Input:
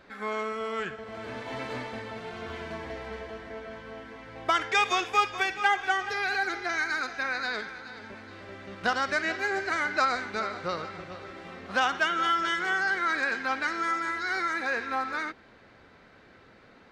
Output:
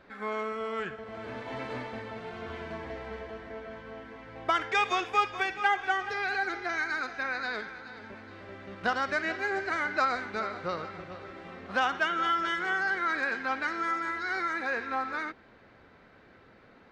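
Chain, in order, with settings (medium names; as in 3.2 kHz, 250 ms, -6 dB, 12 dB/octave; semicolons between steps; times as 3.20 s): treble shelf 4.4 kHz -9.5 dB; trim -1 dB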